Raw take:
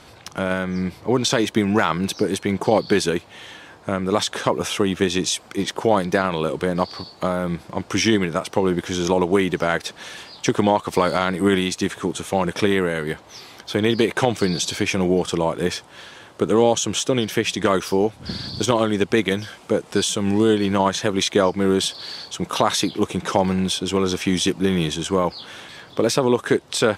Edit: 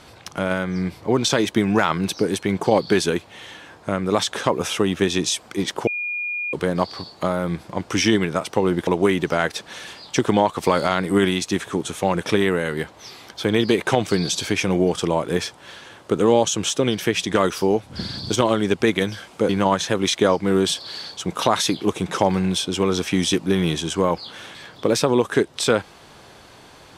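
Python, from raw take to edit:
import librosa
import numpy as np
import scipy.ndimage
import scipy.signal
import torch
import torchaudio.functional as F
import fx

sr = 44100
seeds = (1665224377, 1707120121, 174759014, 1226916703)

y = fx.edit(x, sr, fx.bleep(start_s=5.87, length_s=0.66, hz=2430.0, db=-23.5),
    fx.cut(start_s=8.87, length_s=0.3),
    fx.cut(start_s=19.79, length_s=0.84), tone=tone)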